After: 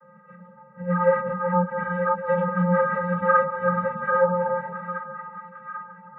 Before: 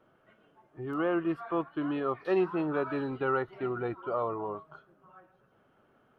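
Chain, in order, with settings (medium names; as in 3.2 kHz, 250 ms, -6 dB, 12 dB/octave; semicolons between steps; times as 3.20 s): resonant high shelf 2.2 kHz -13 dB, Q 3; in parallel at -0.5 dB: compression, threshold -37 dBFS, peak gain reduction 16 dB; on the sum: vocoder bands 16, square 177 Hz; on a send: two-band feedback delay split 1.1 kHz, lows 189 ms, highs 798 ms, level -6 dB; on the sum: three-phase chorus; trim +8.5 dB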